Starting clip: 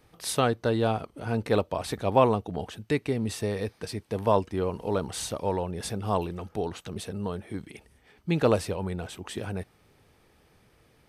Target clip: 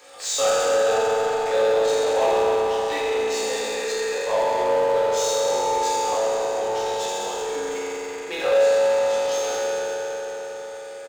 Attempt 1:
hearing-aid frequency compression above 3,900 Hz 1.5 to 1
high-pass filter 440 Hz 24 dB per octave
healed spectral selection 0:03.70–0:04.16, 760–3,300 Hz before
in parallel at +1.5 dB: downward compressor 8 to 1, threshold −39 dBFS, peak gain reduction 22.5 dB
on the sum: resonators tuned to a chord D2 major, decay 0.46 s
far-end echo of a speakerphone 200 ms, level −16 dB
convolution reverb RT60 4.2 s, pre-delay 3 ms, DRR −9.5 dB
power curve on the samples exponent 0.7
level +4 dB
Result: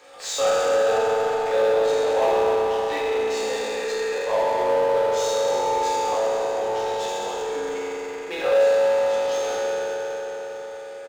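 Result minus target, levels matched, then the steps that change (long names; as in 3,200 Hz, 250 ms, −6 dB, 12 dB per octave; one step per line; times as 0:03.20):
8,000 Hz band −5.0 dB
add after high-pass filter: high-shelf EQ 5,100 Hz +11 dB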